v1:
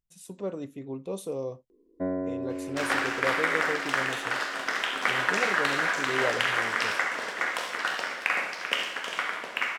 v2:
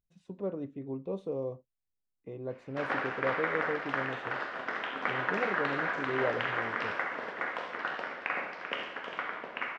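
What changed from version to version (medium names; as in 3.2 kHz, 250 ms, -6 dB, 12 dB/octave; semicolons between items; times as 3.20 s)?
first sound: muted; master: add tape spacing loss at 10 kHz 38 dB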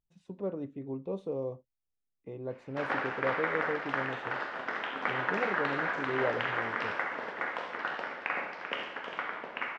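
master: remove band-stop 870 Hz, Q 18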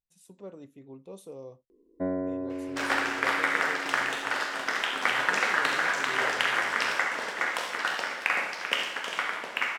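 speech -10.0 dB; first sound: unmuted; master: remove tape spacing loss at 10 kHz 38 dB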